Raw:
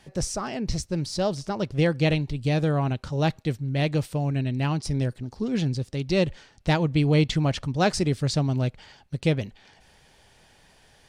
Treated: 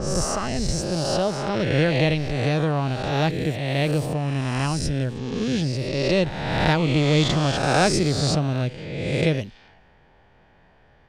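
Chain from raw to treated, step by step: reverse spectral sustain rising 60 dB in 1.50 s; level-controlled noise filter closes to 1.6 kHz, open at -21 dBFS

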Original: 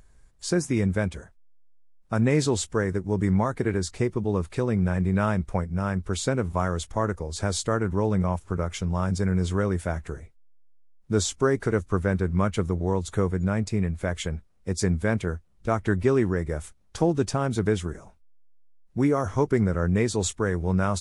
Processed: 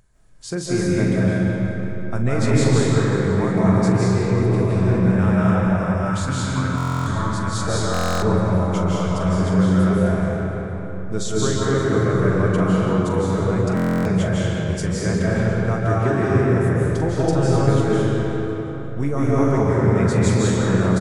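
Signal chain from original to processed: peaking EQ 130 Hz +8.5 dB 0.7 oct; doubling 43 ms -10.5 dB; algorithmic reverb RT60 4.1 s, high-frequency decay 0.55×, pre-delay 120 ms, DRR -8 dB; time-frequency box 6.10–7.67 s, 340–830 Hz -11 dB; bass shelf 230 Hz -3.5 dB; hum notches 50/100/150/200 Hz; on a send: feedback delay 178 ms, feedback 59%, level -13 dB; on the sum: buffer glitch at 6.76/7.92/13.75 s, samples 1024, times 12; trim -3 dB

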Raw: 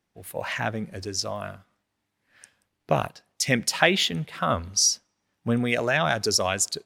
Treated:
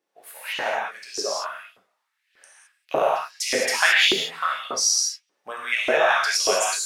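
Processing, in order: gated-style reverb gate 240 ms flat, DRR -5 dB; LFO high-pass saw up 1.7 Hz 360–3300 Hz; trim -4.5 dB

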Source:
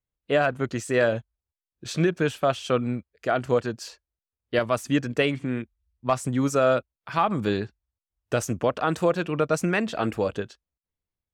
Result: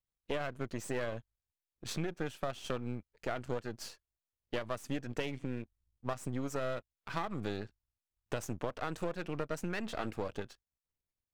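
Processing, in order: partial rectifier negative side -12 dB; compression 4:1, threshold -30 dBFS, peak gain reduction 10.5 dB; trim -3 dB

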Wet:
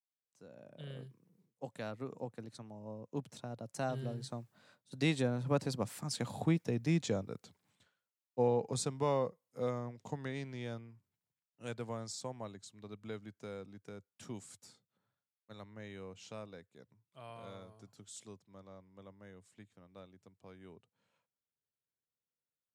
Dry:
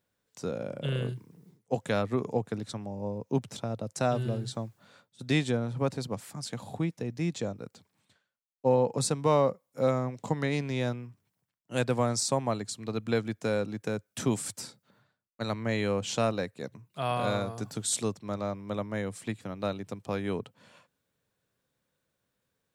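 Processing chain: fade-in on the opening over 0.97 s; Doppler pass-by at 6.51 s, 19 m/s, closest 19 m

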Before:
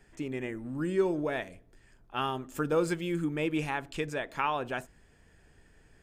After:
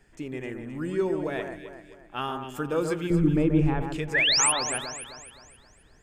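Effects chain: 3.10–3.82 s: tilt EQ -4.5 dB/octave; 4.14–4.52 s: painted sound rise 1.6–11 kHz -22 dBFS; echo whose repeats swap between lows and highs 131 ms, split 1.9 kHz, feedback 64%, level -5.5 dB

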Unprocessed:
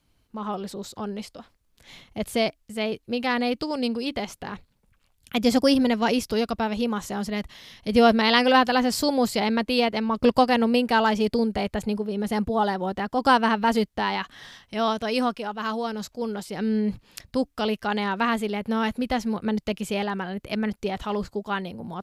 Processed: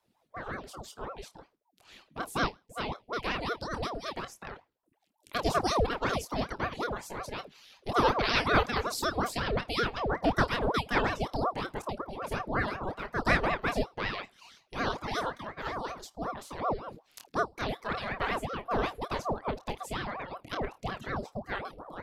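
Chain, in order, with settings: flutter echo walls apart 4.6 m, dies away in 0.28 s; reverb removal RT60 0.87 s; ring modulator with a swept carrier 570 Hz, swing 70%, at 5.4 Hz; trim -5 dB

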